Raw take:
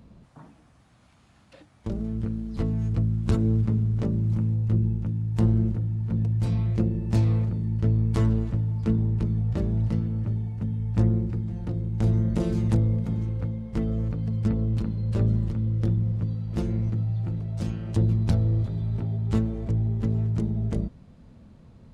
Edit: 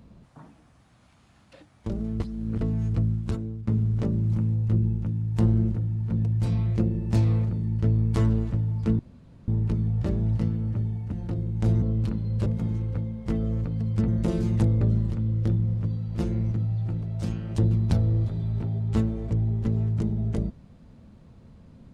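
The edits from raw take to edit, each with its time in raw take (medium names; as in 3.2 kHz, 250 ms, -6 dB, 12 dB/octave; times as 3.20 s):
2.20–2.61 s: reverse
3.11–3.67 s: fade out quadratic, to -14.5 dB
8.99 s: insert room tone 0.49 s
10.63–11.50 s: delete
12.20–12.93 s: swap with 14.55–15.19 s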